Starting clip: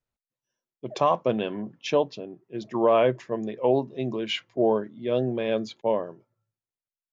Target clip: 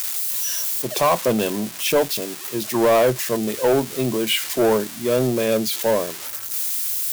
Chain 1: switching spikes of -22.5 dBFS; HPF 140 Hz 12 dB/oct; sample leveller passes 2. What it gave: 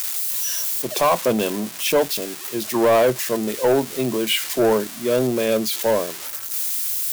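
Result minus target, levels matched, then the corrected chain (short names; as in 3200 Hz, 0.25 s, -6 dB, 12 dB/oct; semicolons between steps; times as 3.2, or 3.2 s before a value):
125 Hz band -3.0 dB
switching spikes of -22.5 dBFS; HPF 42 Hz 12 dB/oct; sample leveller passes 2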